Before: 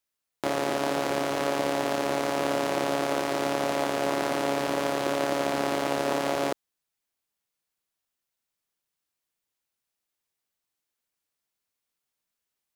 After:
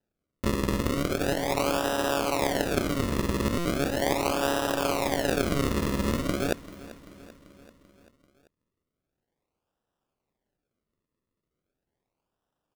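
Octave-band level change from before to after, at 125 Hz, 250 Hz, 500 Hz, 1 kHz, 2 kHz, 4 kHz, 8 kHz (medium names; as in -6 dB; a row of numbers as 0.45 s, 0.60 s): +9.0 dB, +2.5 dB, -1.5 dB, -2.5 dB, 0.0 dB, +1.0 dB, +2.0 dB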